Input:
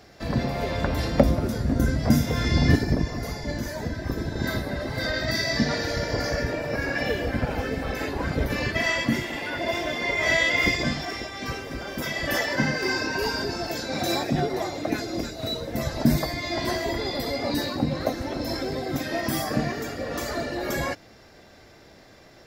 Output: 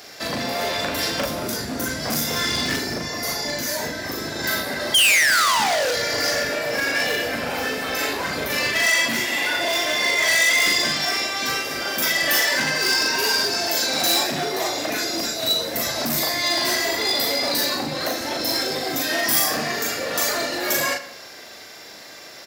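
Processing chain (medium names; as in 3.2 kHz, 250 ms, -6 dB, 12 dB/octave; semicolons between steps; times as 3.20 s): painted sound fall, 4.94–5.92 s, 460–3300 Hz -18 dBFS; in parallel at +2.5 dB: compression, threshold -31 dBFS, peak gain reduction 18.5 dB; on the sum: high-pass 170 Hz 6 dB/octave; doubling 39 ms -3 dB; hard clipper -18.5 dBFS, distortion -9 dB; tilt EQ +3 dB/octave; tape echo 84 ms, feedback 57%, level -13 dB, low-pass 4.4 kHz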